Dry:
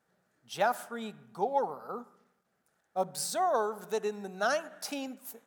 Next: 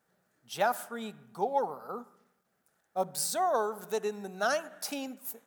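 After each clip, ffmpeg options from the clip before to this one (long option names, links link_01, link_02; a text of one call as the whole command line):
ffmpeg -i in.wav -af "highshelf=frequency=11000:gain=8.5" out.wav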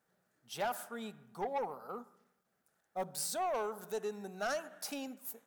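ffmpeg -i in.wav -af "asoftclip=type=tanh:threshold=-25.5dB,volume=-4dB" out.wav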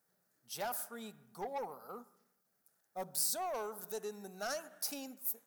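ffmpeg -i in.wav -af "aexciter=amount=1.9:drive=7.1:freq=4400,volume=-4dB" out.wav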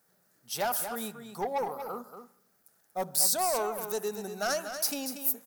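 ffmpeg -i in.wav -af "aecho=1:1:236:0.355,volume=9dB" out.wav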